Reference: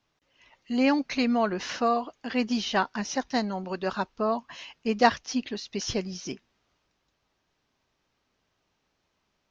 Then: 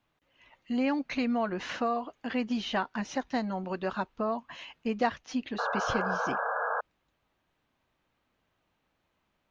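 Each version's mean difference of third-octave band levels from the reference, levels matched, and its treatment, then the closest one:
3.5 dB: parametric band 5,400 Hz −11.5 dB 0.76 octaves
notch filter 410 Hz, Q 12
downward compressor 2 to 1, threshold −29 dBFS, peak gain reduction 8.5 dB
sound drawn into the spectrogram noise, 0:05.58–0:06.81, 440–1,700 Hz −31 dBFS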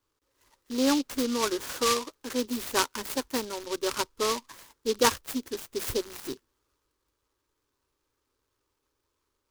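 10.5 dB: loose part that buzzes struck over −38 dBFS, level −27 dBFS
phaser with its sweep stopped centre 700 Hz, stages 6
in parallel at −8 dB: slack as between gear wheels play −38 dBFS
on the sum: short delay modulated by noise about 4,200 Hz, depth 0.11 ms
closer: first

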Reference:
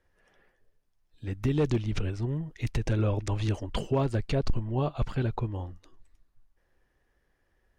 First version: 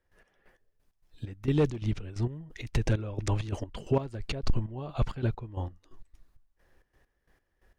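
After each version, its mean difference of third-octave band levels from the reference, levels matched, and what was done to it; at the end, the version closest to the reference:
4.5 dB: in parallel at +0.5 dB: downward compressor, threshold −40 dBFS, peak gain reduction 18.5 dB
on the sum: gate pattern ".x..x..x.xx..xx" 132 BPM −12 dB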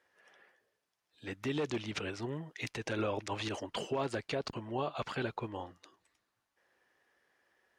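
6.5 dB: meter weighting curve A
brickwall limiter −28 dBFS, peak gain reduction 8.5 dB
level +3 dB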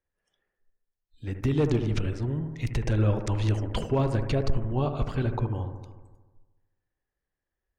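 3.0 dB: noise reduction from a noise print of the clip's start 17 dB
on a send: bucket-brigade delay 75 ms, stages 1,024, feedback 67%, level −8.5 dB
on the sum: level +1 dB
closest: third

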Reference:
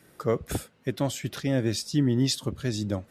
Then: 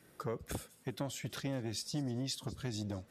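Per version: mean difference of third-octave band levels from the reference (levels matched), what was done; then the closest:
4.5 dB: downward compressor, threshold −27 dBFS, peak gain reduction 8.5 dB
delay with a high-pass on its return 197 ms, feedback 31%, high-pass 4,100 Hz, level −17 dB
saturating transformer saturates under 380 Hz
level −5.5 dB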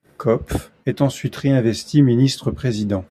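3.0 dB: noise gate −56 dBFS, range −27 dB
high-shelf EQ 3,200 Hz −9 dB
double-tracking delay 14 ms −8 dB
level +8.5 dB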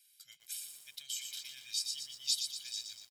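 18.5 dB: inverse Chebyshev high-pass filter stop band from 1,100 Hz, stop band 50 dB
comb filter 1.3 ms, depth 98%
feedback echo at a low word length 119 ms, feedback 55%, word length 9 bits, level −6 dB
level −5.5 dB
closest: second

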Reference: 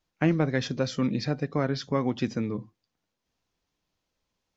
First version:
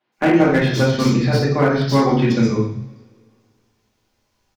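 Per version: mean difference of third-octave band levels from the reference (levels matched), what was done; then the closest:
8.0 dB: three-band delay without the direct sound mids, highs, lows 120/180 ms, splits 160/3,500 Hz
coupled-rooms reverb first 0.56 s, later 2.3 s, from −26 dB, DRR −7.5 dB
slew-rate limiting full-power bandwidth 120 Hz
level +5.5 dB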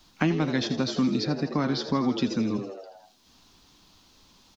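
5.5 dB: graphic EQ with 10 bands 125 Hz −4 dB, 250 Hz +6 dB, 500 Hz −8 dB, 1,000 Hz +4 dB, 2,000 Hz −5 dB, 4,000 Hz +7 dB
on a send: echo with shifted repeats 81 ms, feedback 53%, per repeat +88 Hz, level −11.5 dB
on the sum: multiband upward and downward compressor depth 70%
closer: second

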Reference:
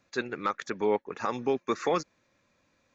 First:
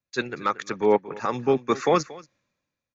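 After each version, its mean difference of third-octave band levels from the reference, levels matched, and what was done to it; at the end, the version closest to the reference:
2.5 dB: parametric band 140 Hz +6 dB 0.44 octaves
downsampling to 16,000 Hz
single-tap delay 232 ms −16 dB
multiband upward and downward expander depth 70%
level +5 dB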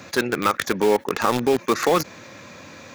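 8.0 dB: stylus tracing distortion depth 0.081 ms
high-pass filter 82 Hz 24 dB per octave
in parallel at −3 dB: bit reduction 5 bits
on the sum: envelope flattener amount 50%
level +2.5 dB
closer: first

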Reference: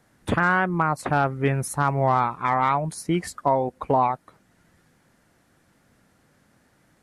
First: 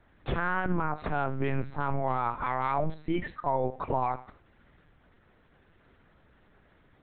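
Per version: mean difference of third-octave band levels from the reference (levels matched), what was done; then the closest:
6.0 dB: brickwall limiter −19.5 dBFS, peak gain reduction 9.5 dB
reverb whose tail is shaped and stops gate 200 ms falling, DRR 10.5 dB
linear-prediction vocoder at 8 kHz pitch kept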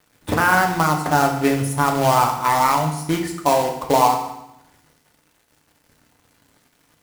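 11.5 dB: dynamic equaliser 760 Hz, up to +4 dB, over −32 dBFS, Q 0.82
log-companded quantiser 4 bits
feedback delay network reverb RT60 0.85 s, low-frequency decay 1.35×, high-frequency decay 0.95×, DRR 2 dB
level −1 dB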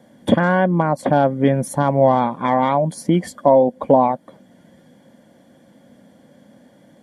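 4.5 dB: notch comb filter 1,300 Hz
hollow resonant body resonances 230/540/3,300 Hz, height 15 dB, ringing for 25 ms
in parallel at +1 dB: downward compressor, threshold −24 dBFS, peak gain reduction 16 dB
on the sum: level −3 dB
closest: third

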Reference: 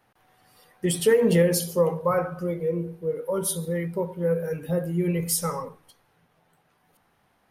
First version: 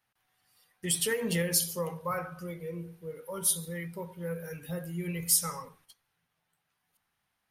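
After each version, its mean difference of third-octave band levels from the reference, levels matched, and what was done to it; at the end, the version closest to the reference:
4.5 dB: noise gate −53 dBFS, range −8 dB
guitar amp tone stack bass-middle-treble 5-5-5
level +7 dB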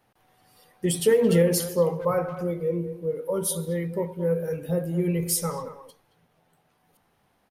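1.5 dB: parametric band 1,500 Hz −4 dB 1.4 octaves
far-end echo of a speakerphone 220 ms, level −12 dB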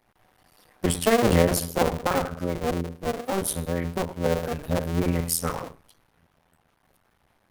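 10.0 dB: sub-harmonics by changed cycles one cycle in 2, muted
low-shelf EQ 88 Hz +7 dB
level +2 dB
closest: second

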